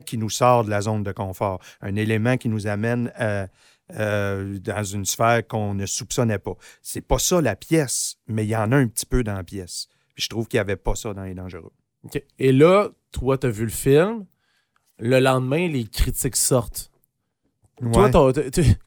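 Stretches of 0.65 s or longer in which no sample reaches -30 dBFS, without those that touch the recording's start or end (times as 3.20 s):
14.22–15.02 s
16.83–17.81 s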